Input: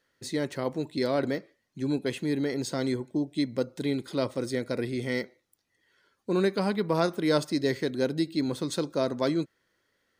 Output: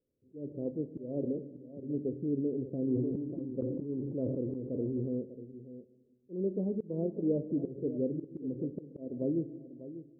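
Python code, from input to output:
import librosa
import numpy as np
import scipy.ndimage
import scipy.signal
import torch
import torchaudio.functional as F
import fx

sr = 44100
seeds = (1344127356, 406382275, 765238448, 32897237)

y = scipy.signal.sosfilt(scipy.signal.butter(6, 510.0, 'lowpass', fs=sr, output='sos'), x)
y = fx.rev_fdn(y, sr, rt60_s=1.4, lf_ratio=1.35, hf_ratio=0.9, size_ms=69.0, drr_db=11.0)
y = fx.auto_swell(y, sr, attack_ms=202.0)
y = y + 10.0 ** (-13.0 / 20.0) * np.pad(y, (int(594 * sr / 1000.0), 0))[:len(y)]
y = fx.sustainer(y, sr, db_per_s=28.0, at=(2.86, 5.18), fade=0.02)
y = y * librosa.db_to_amplitude(-4.0)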